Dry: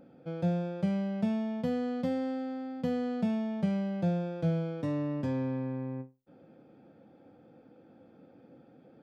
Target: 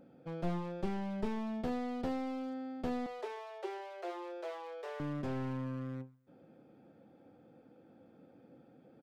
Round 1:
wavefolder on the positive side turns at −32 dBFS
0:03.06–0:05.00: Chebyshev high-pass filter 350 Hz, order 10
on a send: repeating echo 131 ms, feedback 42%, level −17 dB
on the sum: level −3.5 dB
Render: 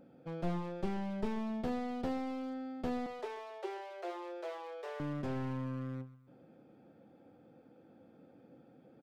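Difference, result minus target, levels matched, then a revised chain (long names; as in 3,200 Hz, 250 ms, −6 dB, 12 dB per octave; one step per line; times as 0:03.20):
echo-to-direct +8.5 dB
wavefolder on the positive side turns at −32 dBFS
0:03.06–0:05.00: Chebyshev high-pass filter 350 Hz, order 10
on a send: repeating echo 131 ms, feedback 42%, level −25.5 dB
on the sum: level −3.5 dB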